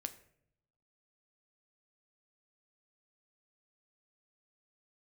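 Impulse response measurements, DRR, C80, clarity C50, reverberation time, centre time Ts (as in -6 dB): 8.5 dB, 17.0 dB, 14.5 dB, 0.70 s, 6 ms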